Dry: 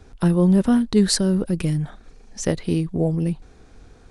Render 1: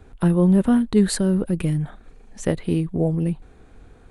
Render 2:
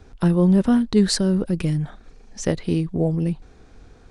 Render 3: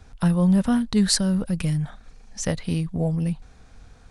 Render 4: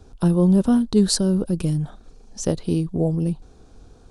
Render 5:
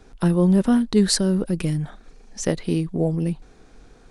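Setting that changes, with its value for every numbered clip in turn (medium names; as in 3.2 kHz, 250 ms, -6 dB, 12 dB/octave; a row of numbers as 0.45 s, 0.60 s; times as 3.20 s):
peaking EQ, frequency: 5.4 kHz, 14 kHz, 360 Hz, 2 kHz, 78 Hz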